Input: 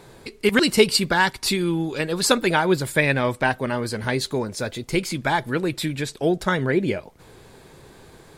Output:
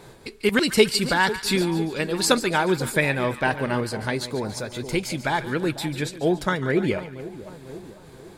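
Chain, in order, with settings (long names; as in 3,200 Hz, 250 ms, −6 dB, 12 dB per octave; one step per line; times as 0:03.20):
echo with a time of its own for lows and highs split 1,000 Hz, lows 498 ms, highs 143 ms, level −13 dB
amplitude modulation by smooth noise, depth 60%
level +2 dB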